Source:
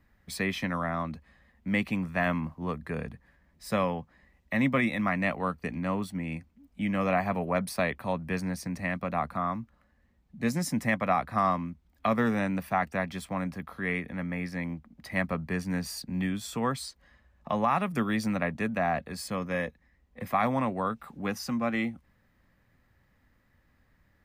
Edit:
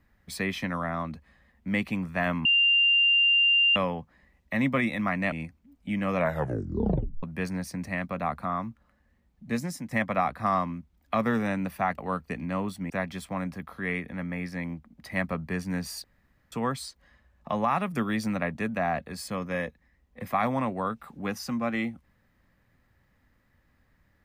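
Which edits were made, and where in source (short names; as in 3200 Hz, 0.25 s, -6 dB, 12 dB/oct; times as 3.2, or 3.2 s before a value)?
2.45–3.76 bleep 2790 Hz -18 dBFS
5.32–6.24 move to 12.9
7.07 tape stop 1.08 s
10.4–10.83 fade out, to -12 dB
16.04–16.52 room tone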